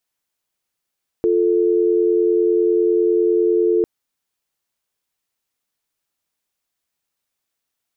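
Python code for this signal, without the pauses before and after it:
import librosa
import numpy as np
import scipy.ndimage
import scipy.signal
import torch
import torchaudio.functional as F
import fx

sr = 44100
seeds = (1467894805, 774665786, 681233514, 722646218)

y = fx.call_progress(sr, length_s=2.6, kind='dial tone', level_db=-16.0)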